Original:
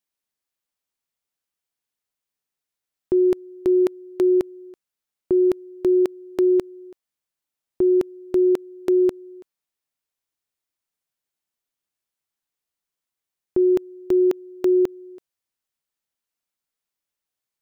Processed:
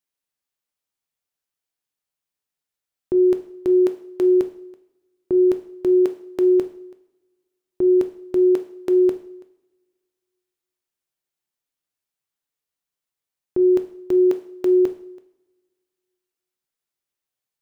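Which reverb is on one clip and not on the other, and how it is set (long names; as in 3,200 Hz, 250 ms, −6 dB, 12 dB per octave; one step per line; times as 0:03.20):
coupled-rooms reverb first 0.57 s, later 2.1 s, from −27 dB, DRR 7.5 dB
level −1.5 dB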